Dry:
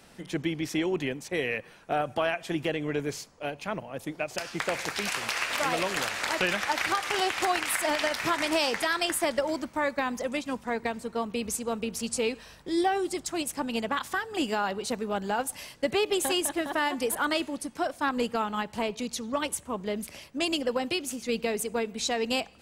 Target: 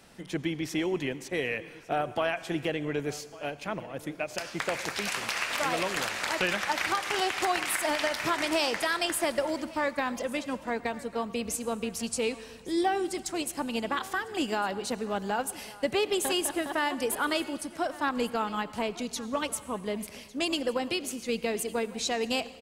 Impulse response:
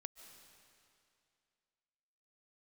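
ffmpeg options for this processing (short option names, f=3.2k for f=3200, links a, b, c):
-filter_complex "[0:a]aecho=1:1:1152:0.1,asplit=2[a][b];[1:a]atrim=start_sample=2205,asetrate=74970,aresample=44100[c];[b][c]afir=irnorm=-1:irlink=0,volume=5.5dB[d];[a][d]amix=inputs=2:normalize=0,volume=-5dB"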